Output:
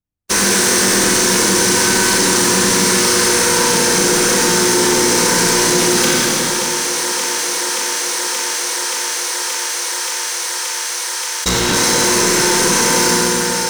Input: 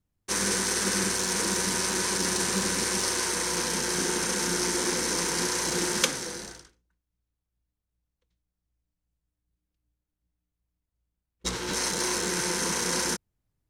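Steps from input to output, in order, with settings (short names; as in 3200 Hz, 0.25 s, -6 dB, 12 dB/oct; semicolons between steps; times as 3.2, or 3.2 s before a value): expander -28 dBFS; sample leveller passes 5; on a send: thinning echo 0.577 s, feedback 84%, high-pass 270 Hz, level -19.5 dB; on the sum: Schroeder reverb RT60 1.5 s, combs from 25 ms, DRR -1 dB; fast leveller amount 70%; gain -7 dB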